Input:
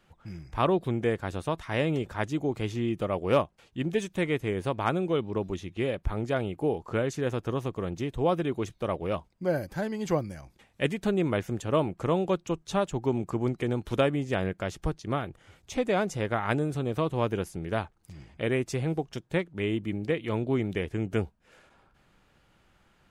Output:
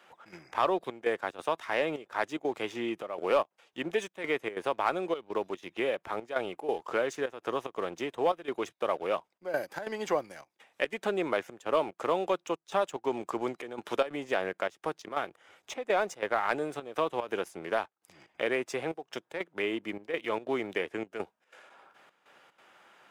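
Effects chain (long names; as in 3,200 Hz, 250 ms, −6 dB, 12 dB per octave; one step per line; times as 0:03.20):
high-pass filter 530 Hz 12 dB per octave
high-shelf EQ 4,000 Hz −7 dB
notch filter 4,300 Hz, Q 14
leveller curve on the samples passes 1
gate pattern "xxx.xxxxxxx.." 184 BPM −12 dB
multiband upward and downward compressor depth 40%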